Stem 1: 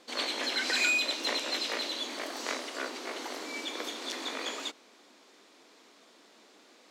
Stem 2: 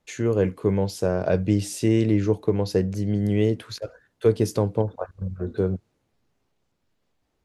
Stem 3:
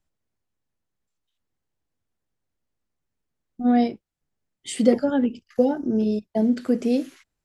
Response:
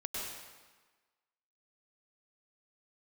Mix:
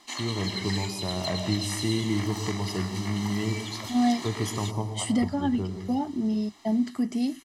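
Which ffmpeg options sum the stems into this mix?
-filter_complex "[0:a]acompressor=threshold=0.0141:ratio=6,volume=1.06[s0];[1:a]volume=0.335,asplit=2[s1][s2];[s2]volume=0.596[s3];[2:a]adelay=300,volume=0.596[s4];[3:a]atrim=start_sample=2205[s5];[s3][s5]afir=irnorm=-1:irlink=0[s6];[s0][s1][s4][s6]amix=inputs=4:normalize=0,bass=f=250:g=-4,treble=f=4000:g=3,aecho=1:1:1:0.88"

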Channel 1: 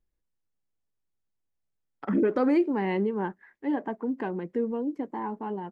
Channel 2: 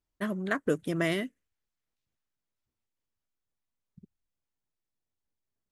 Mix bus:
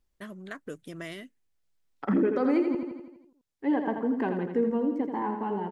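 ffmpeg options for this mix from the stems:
-filter_complex "[0:a]volume=1.26,asplit=3[s0][s1][s2];[s0]atrim=end=2.75,asetpts=PTS-STARTPTS,afade=t=out:st=2.746:d=0.004:c=hsin[s3];[s1]atrim=start=2.75:end=3.59,asetpts=PTS-STARTPTS,volume=0[s4];[s2]atrim=start=3.59,asetpts=PTS-STARTPTS,afade=t=in:d=0.004:c=hsin[s5];[s3][s4][s5]concat=n=3:v=0:a=1,asplit=2[s6][s7];[s7]volume=0.447[s8];[1:a]equalizer=f=5300:t=o:w=2.6:g=5,acompressor=threshold=0.00178:ratio=1.5,volume=0.891[s9];[s8]aecho=0:1:83|166|249|332|415|498|581|664:1|0.55|0.303|0.166|0.0915|0.0503|0.0277|0.0152[s10];[s6][s9][s10]amix=inputs=3:normalize=0,alimiter=limit=0.158:level=0:latency=1:release=374"

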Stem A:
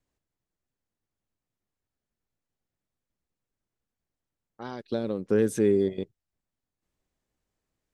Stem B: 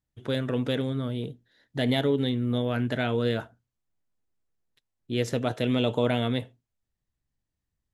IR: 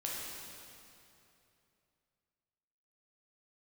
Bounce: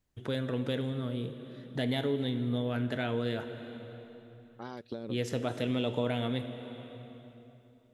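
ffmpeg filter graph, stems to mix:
-filter_complex "[0:a]acompressor=threshold=0.0355:ratio=6,volume=0.841[s0];[1:a]volume=1,asplit=3[s1][s2][s3];[s2]volume=0.335[s4];[s3]apad=whole_len=349876[s5];[s0][s5]sidechaincompress=threshold=0.0251:ratio=8:attack=16:release=709[s6];[2:a]atrim=start_sample=2205[s7];[s4][s7]afir=irnorm=-1:irlink=0[s8];[s6][s1][s8]amix=inputs=3:normalize=0,acompressor=threshold=0.00794:ratio=1.5"

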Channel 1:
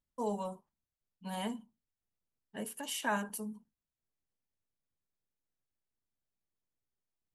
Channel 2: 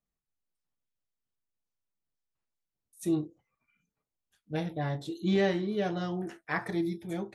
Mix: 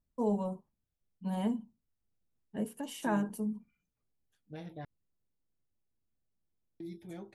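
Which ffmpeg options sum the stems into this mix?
-filter_complex "[0:a]tiltshelf=f=710:g=8.5,volume=1.06[s0];[1:a]alimiter=level_in=1.68:limit=0.0631:level=0:latency=1:release=87,volume=0.596,volume=0.398,asplit=3[s1][s2][s3];[s1]atrim=end=4.85,asetpts=PTS-STARTPTS,afade=t=out:st=4.846:d=0.004:c=hsin[s4];[s2]atrim=start=4.85:end=6.8,asetpts=PTS-STARTPTS,volume=0[s5];[s3]atrim=start=6.8,asetpts=PTS-STARTPTS,afade=t=in:d=0.004:c=hsin[s6];[s4][s5][s6]concat=n=3:v=0:a=1[s7];[s0][s7]amix=inputs=2:normalize=0"

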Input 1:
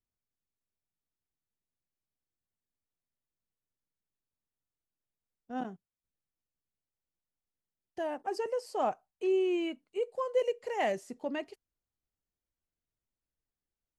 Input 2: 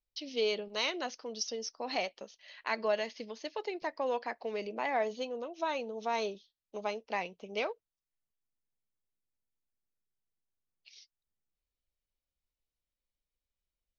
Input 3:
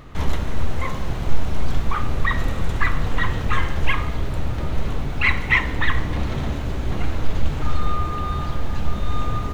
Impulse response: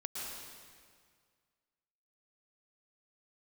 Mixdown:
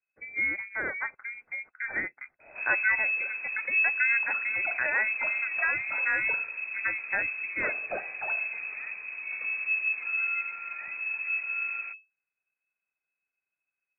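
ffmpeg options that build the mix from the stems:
-filter_complex "[0:a]lowpass=1500,volume=0.15[s0];[1:a]equalizer=f=1100:w=5.5:g=12,volume=1.33[s1];[2:a]adelay=2400,volume=0.168[s2];[s0][s1][s2]amix=inputs=3:normalize=0,lowpass=f=2200:t=q:w=0.5098,lowpass=f=2200:t=q:w=0.6013,lowpass=f=2200:t=q:w=0.9,lowpass=f=2200:t=q:w=2.563,afreqshift=-2600"

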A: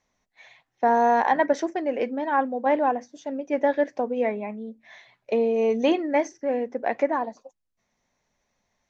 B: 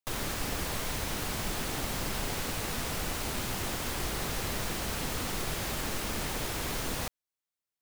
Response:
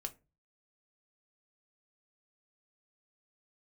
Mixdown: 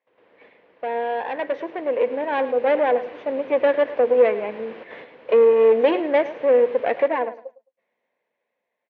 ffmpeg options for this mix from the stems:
-filter_complex "[0:a]aeval=exprs='(tanh(12.6*val(0)+0.6)-tanh(0.6))/12.6':c=same,volume=0.891,asplit=3[s0][s1][s2];[s1]volume=0.178[s3];[1:a]lowpass=f=1700:p=1,volume=0.299,asplit=2[s4][s5];[s5]volume=0.376[s6];[s2]apad=whole_len=344611[s7];[s4][s7]sidechaingate=range=0.178:threshold=0.00224:ratio=16:detection=peak[s8];[s3][s6]amix=inputs=2:normalize=0,aecho=0:1:107|214|321:1|0.21|0.0441[s9];[s0][s8][s9]amix=inputs=3:normalize=0,dynaudnorm=f=580:g=7:m=3.16,highpass=400,equalizer=f=490:t=q:w=4:g=9,equalizer=f=800:t=q:w=4:g=-4,equalizer=f=1300:t=q:w=4:g=-8,lowpass=f=2800:w=0.5412,lowpass=f=2800:w=1.3066"

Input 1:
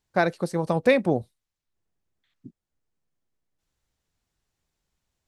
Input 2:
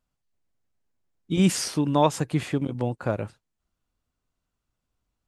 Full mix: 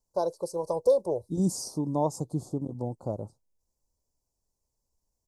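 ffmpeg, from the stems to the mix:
-filter_complex "[0:a]equalizer=f=150:w=0.53:g=-13.5,aecho=1:1:2:0.7,volume=0.794[s0];[1:a]volume=0.501[s1];[s0][s1]amix=inputs=2:normalize=0,asuperstop=centerf=2200:order=8:qfactor=0.54"

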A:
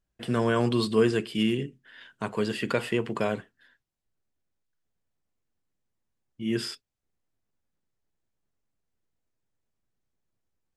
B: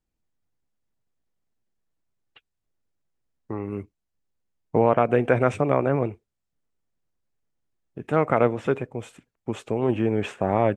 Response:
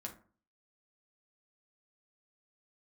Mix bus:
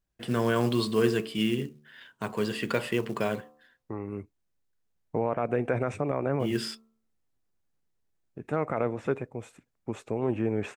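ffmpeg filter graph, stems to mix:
-filter_complex "[0:a]bandreject=f=74.32:t=h:w=4,bandreject=f=148.64:t=h:w=4,bandreject=f=222.96:t=h:w=4,bandreject=f=297.28:t=h:w=4,bandreject=f=371.6:t=h:w=4,bandreject=f=445.92:t=h:w=4,bandreject=f=520.24:t=h:w=4,bandreject=f=594.56:t=h:w=4,bandreject=f=668.88:t=h:w=4,bandreject=f=743.2:t=h:w=4,bandreject=f=817.52:t=h:w=4,bandreject=f=891.84:t=h:w=4,bandreject=f=966.16:t=h:w=4,bandreject=f=1040.48:t=h:w=4,bandreject=f=1114.8:t=h:w=4,bandreject=f=1189.12:t=h:w=4,bandreject=f=1263.44:t=h:w=4,bandreject=f=1337.76:t=h:w=4,acrusher=bits=6:mode=log:mix=0:aa=0.000001,volume=0.891[s0];[1:a]equalizer=f=3100:t=o:w=0.26:g=-8.5,alimiter=limit=0.282:level=0:latency=1:release=35,adelay=400,volume=0.562[s1];[s0][s1]amix=inputs=2:normalize=0"

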